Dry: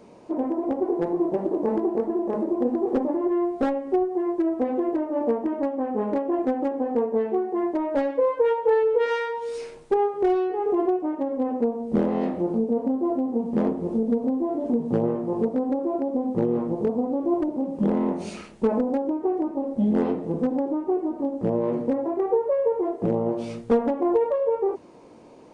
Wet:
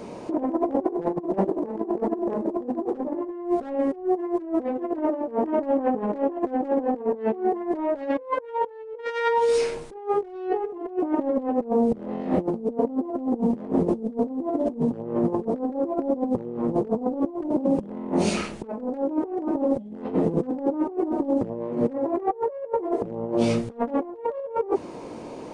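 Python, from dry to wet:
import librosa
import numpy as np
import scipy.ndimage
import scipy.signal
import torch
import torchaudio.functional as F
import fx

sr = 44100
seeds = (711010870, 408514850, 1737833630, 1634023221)

y = fx.over_compress(x, sr, threshold_db=-30.0, ratio=-0.5)
y = y * 10.0 ** (5.0 / 20.0)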